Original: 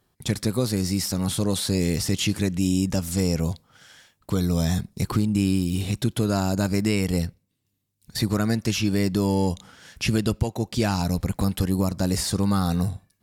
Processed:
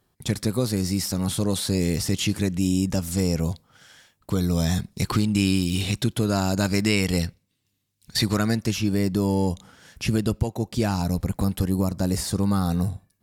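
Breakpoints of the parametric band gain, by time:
parametric band 3,300 Hz 2.9 octaves
0:04.37 −1 dB
0:05.27 +8 dB
0:05.85 +8 dB
0:06.18 0 dB
0:06.73 +6.5 dB
0:08.32 +6.5 dB
0:08.78 −4 dB

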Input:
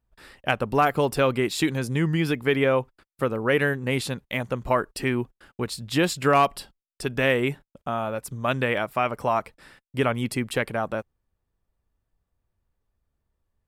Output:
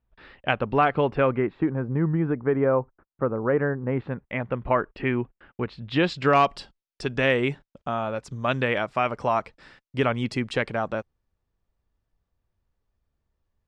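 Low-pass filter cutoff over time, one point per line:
low-pass filter 24 dB per octave
0:00.90 3,600 Hz
0:01.63 1,400 Hz
0:03.84 1,400 Hz
0:04.59 2,800 Hz
0:05.70 2,800 Hz
0:06.41 6,400 Hz

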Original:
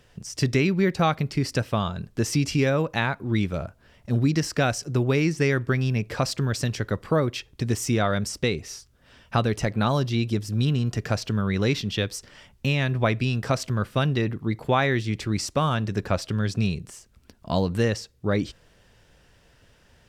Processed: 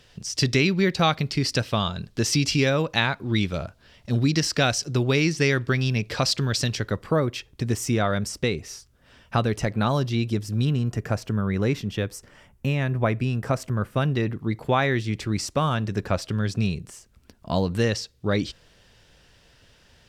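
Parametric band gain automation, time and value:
parametric band 4,100 Hz 1.4 octaves
0:06.61 +9 dB
0:07.11 −1 dB
0:10.55 −1 dB
0:11.02 −9.5 dB
0:13.81 −9.5 dB
0:14.30 −0.5 dB
0:17.59 −0.5 dB
0:17.99 +6.5 dB

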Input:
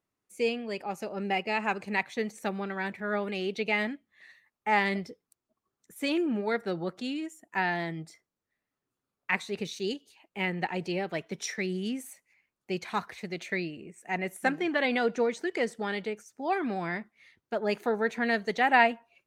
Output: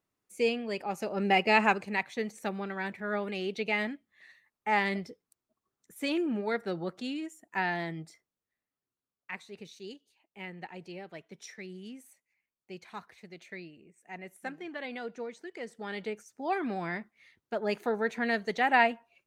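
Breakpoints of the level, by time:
0:00.90 +0.5 dB
0:01.61 +7 dB
0:01.89 −2 dB
0:07.99 −2 dB
0:09.32 −12 dB
0:15.60 −12 dB
0:16.09 −2 dB

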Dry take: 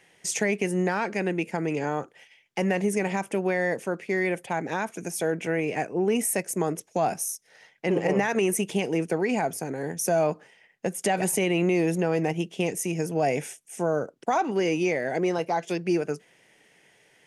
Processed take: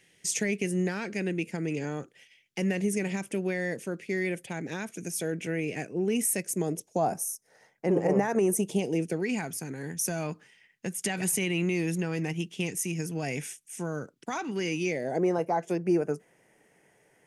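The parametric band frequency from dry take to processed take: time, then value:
parametric band −14 dB 1.6 octaves
0:06.52 890 Hz
0:07.14 3,000 Hz
0:08.38 3,000 Hz
0:09.39 640 Hz
0:14.82 640 Hz
0:15.24 3,600 Hz

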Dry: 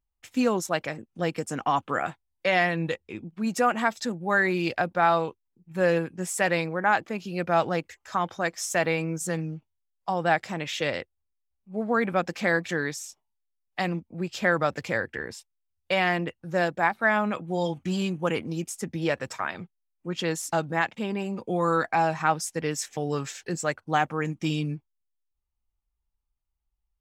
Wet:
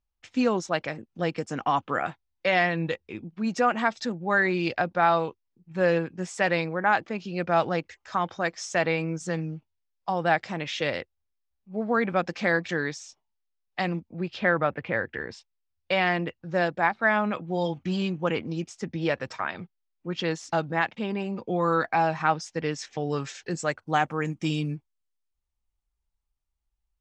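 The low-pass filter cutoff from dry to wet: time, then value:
low-pass filter 24 dB per octave
0:14.04 6,100 Hz
0:14.79 2,600 Hz
0:15.35 5,600 Hz
0:22.97 5,600 Hz
0:24.26 9,600 Hz

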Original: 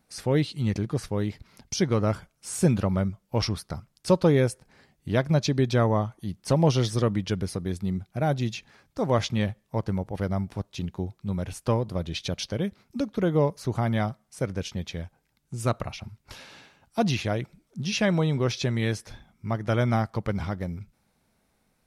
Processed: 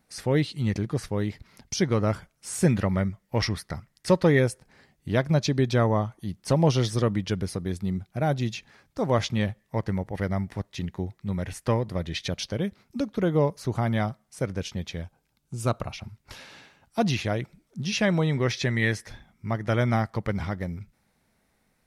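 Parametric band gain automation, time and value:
parametric band 1,900 Hz 0.32 octaves
+4 dB
from 0:02.63 +13 dB
from 0:04.39 +2.5 dB
from 0:09.60 +11.5 dB
from 0:12.30 +2 dB
from 0:15.03 −5.5 dB
from 0:15.92 +3 dB
from 0:18.27 +13 dB
from 0:19.08 +6 dB

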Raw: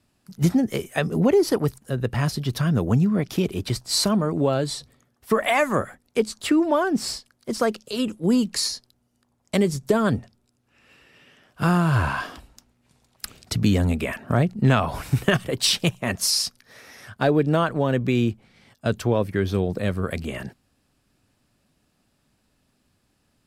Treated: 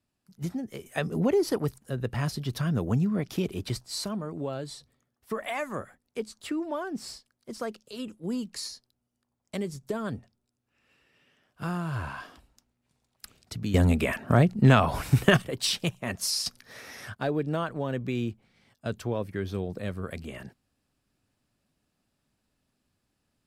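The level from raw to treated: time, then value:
−13.5 dB
from 0:00.86 −6 dB
from 0:03.85 −12 dB
from 0:13.74 0 dB
from 0:15.42 −7 dB
from 0:16.46 +1.5 dB
from 0:17.15 −9 dB

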